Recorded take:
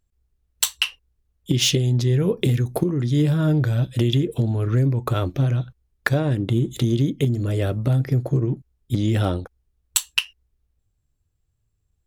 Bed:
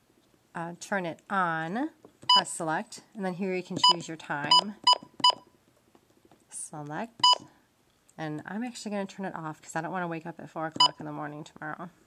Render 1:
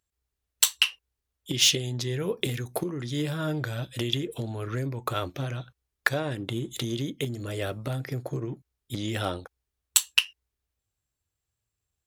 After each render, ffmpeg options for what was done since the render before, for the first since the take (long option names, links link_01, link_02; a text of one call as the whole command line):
ffmpeg -i in.wav -af "highpass=79,equalizer=frequency=140:width=0.32:gain=-12.5" out.wav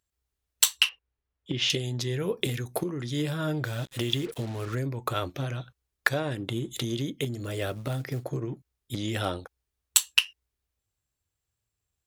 ffmpeg -i in.wav -filter_complex "[0:a]asettb=1/sr,asplit=3[link_01][link_02][link_03];[link_01]atrim=end=0.894[link_04];[link_02]atrim=start=0.89:end=1.7,asetpts=PTS-STARTPTS,afade=type=in:duration=0.004:curve=qsin,afade=type=out:start_time=0.806:duration=0.004:curve=qsin,lowpass=2700[link_05];[link_03]atrim=start=1.696[link_06];[link_04][link_05]acrossfade=duration=0.004:curve1=hsin:curve2=qsin[link_07];[link_07][link_06]acrossfade=duration=0.004:curve1=qsin:curve2=hsin,asettb=1/sr,asplit=3[link_08][link_09][link_10];[link_08]atrim=end=3.644[link_11];[link_09]atrim=start=3.64:end=4.75,asetpts=PTS-STARTPTS,afade=type=in:duration=0.004:curve=qsin,afade=type=out:start_time=1.106:duration=0.004:curve=qsin,acrusher=bits=6:mix=0:aa=0.5[link_12];[link_10]atrim=start=4.746[link_13];[link_11][link_12]acrossfade=duration=0.004:curve1=hsin:curve2=qsin[link_14];[link_14][link_13]acrossfade=duration=0.004:curve1=qsin:curve2=hsin,asettb=1/sr,asplit=3[link_15][link_16][link_17];[link_15]atrim=end=7.444[link_18];[link_16]atrim=start=7.44:end=8.24,asetpts=PTS-STARTPTS,afade=type=in:duration=0.004:curve=qsin,afade=type=out:start_time=0.796:duration=0.004:curve=qsin,acrusher=bits=6:mode=log:mix=0:aa=0.000001[link_19];[link_17]atrim=start=8.236[link_20];[link_18][link_19]acrossfade=duration=0.004:curve1=hsin:curve2=qsin[link_21];[link_21][link_20]acrossfade=duration=0.004:curve1=qsin:curve2=hsin" out.wav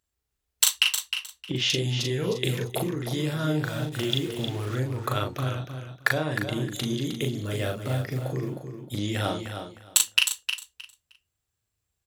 ffmpeg -i in.wav -filter_complex "[0:a]asplit=2[link_01][link_02];[link_02]adelay=39,volume=-3.5dB[link_03];[link_01][link_03]amix=inputs=2:normalize=0,asplit=2[link_04][link_05];[link_05]aecho=0:1:310|620|930:0.398|0.0756|0.0144[link_06];[link_04][link_06]amix=inputs=2:normalize=0" out.wav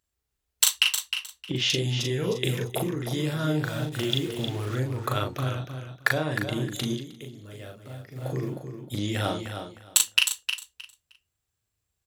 ffmpeg -i in.wav -filter_complex "[0:a]asettb=1/sr,asplit=3[link_01][link_02][link_03];[link_01]atrim=end=1.994[link_04];[link_02]atrim=start=1.99:end=3.25,asetpts=PTS-STARTPTS,afade=type=in:duration=0.004:curve=qsin,afade=type=out:start_time=1.256:duration=0.004:curve=qsin,bandreject=frequency=4300:width=8.9[link_05];[link_03]atrim=start=3.246[link_06];[link_04][link_05]acrossfade=duration=0.004:curve1=hsin:curve2=qsin[link_07];[link_07][link_06]acrossfade=duration=0.004:curve1=qsin:curve2=hsin,asplit=3[link_08][link_09][link_10];[link_08]atrim=end=7.05,asetpts=PTS-STARTPTS,afade=type=out:start_time=6.92:duration=0.13:silence=0.223872[link_11];[link_09]atrim=start=7.05:end=8.15,asetpts=PTS-STARTPTS,volume=-13dB[link_12];[link_10]atrim=start=8.15,asetpts=PTS-STARTPTS,afade=type=in:duration=0.13:silence=0.223872[link_13];[link_11][link_12][link_13]concat=n=3:v=0:a=1" out.wav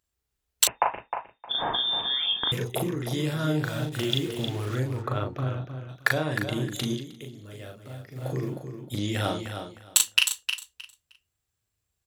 ffmpeg -i in.wav -filter_complex "[0:a]asettb=1/sr,asplit=3[link_01][link_02][link_03];[link_01]atrim=end=0.674[link_04];[link_02]atrim=start=0.67:end=2.52,asetpts=PTS-STARTPTS,afade=type=in:duration=0.004:curve=qsin,afade=type=out:start_time=1.846:duration=0.004:curve=qsin,lowpass=frequency=3100:width_type=q:width=0.5098,lowpass=frequency=3100:width_type=q:width=0.6013,lowpass=frequency=3100:width_type=q:width=0.9,lowpass=frequency=3100:width_type=q:width=2.563,afreqshift=-3700[link_05];[link_03]atrim=start=2.516[link_06];[link_04][link_05]acrossfade=duration=0.004:curve1=hsin:curve2=qsin[link_07];[link_07][link_06]acrossfade=duration=0.004:curve1=qsin:curve2=hsin,asplit=3[link_08][link_09][link_10];[link_08]afade=type=out:start_time=5.01:duration=0.02[link_11];[link_09]lowpass=frequency=1200:poles=1,afade=type=in:start_time=5.01:duration=0.02,afade=type=out:start_time=5.88:duration=0.02[link_12];[link_10]afade=type=in:start_time=5.88:duration=0.02[link_13];[link_11][link_12][link_13]amix=inputs=3:normalize=0" out.wav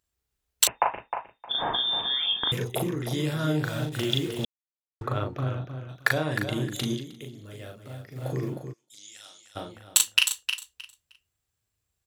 ffmpeg -i in.wav -filter_complex "[0:a]asplit=3[link_01][link_02][link_03];[link_01]afade=type=out:start_time=8.72:duration=0.02[link_04];[link_02]bandpass=frequency=6600:width_type=q:width=2.6,afade=type=in:start_time=8.72:duration=0.02,afade=type=out:start_time=9.55:duration=0.02[link_05];[link_03]afade=type=in:start_time=9.55:duration=0.02[link_06];[link_04][link_05][link_06]amix=inputs=3:normalize=0,asplit=3[link_07][link_08][link_09];[link_07]atrim=end=4.45,asetpts=PTS-STARTPTS,afade=type=out:start_time=4.446:duration=0.004:curve=hsin[link_10];[link_08]atrim=start=4.45:end=5.01,asetpts=PTS-STARTPTS,volume=0[link_11];[link_09]atrim=start=5.01,asetpts=PTS-STARTPTS,afade=type=in:duration=0.004:curve=hsin[link_12];[link_10][link_11][link_12]concat=n=3:v=0:a=1" out.wav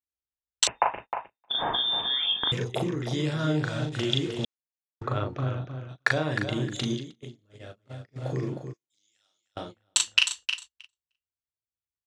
ffmpeg -i in.wav -af "agate=range=-23dB:threshold=-40dB:ratio=16:detection=peak,lowpass=frequency=7500:width=0.5412,lowpass=frequency=7500:width=1.3066" out.wav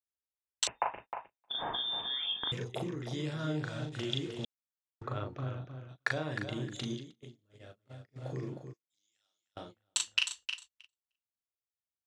ffmpeg -i in.wav -af "volume=-8.5dB" out.wav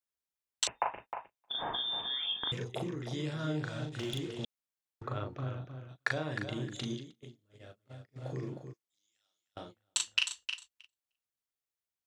ffmpeg -i in.wav -filter_complex "[0:a]asettb=1/sr,asplit=3[link_01][link_02][link_03];[link_01]atrim=end=3.924[link_04];[link_02]atrim=start=3.92:end=4.35,asetpts=PTS-STARTPTS,afade=type=in:duration=0.004:curve=qsin,afade=type=out:start_time=0.426:duration=0.004:curve=qsin,asoftclip=type=hard:threshold=-31dB[link_05];[link_03]atrim=start=4.346[link_06];[link_04][link_05]acrossfade=duration=0.004:curve1=hsin:curve2=qsin[link_07];[link_07][link_06]acrossfade=duration=0.004:curve1=qsin:curve2=hsin" out.wav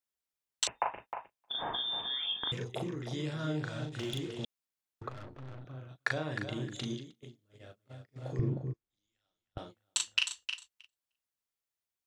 ffmpeg -i in.wav -filter_complex "[0:a]asettb=1/sr,asplit=3[link_01][link_02][link_03];[link_01]atrim=end=5.094[link_04];[link_02]atrim=start=5.09:end=5.66,asetpts=PTS-STARTPTS,afade=type=in:duration=0.004:curve=qsin,afade=type=out:start_time=0.566:duration=0.004:curve=qsin,aeval=exprs='(tanh(158*val(0)+0.75)-tanh(0.75))/158':channel_layout=same[link_05];[link_03]atrim=start=5.656[link_06];[link_04][link_05]acrossfade=duration=0.004:curve1=hsin:curve2=qsin[link_07];[link_07][link_06]acrossfade=duration=0.004:curve1=qsin:curve2=hsin,asettb=1/sr,asplit=3[link_08][link_09][link_10];[link_08]atrim=end=8.394[link_11];[link_09]atrim=start=8.39:end=9.58,asetpts=PTS-STARTPTS,afade=type=in:duration=0.004:curve=qsin,afade=type=out:start_time=1.186:duration=0.004:curve=qsin,aemphasis=mode=reproduction:type=riaa[link_12];[link_10]atrim=start=9.576[link_13];[link_11][link_12]acrossfade=duration=0.004:curve1=hsin:curve2=qsin[link_14];[link_14][link_13]acrossfade=duration=0.004:curve1=qsin:curve2=hsin" out.wav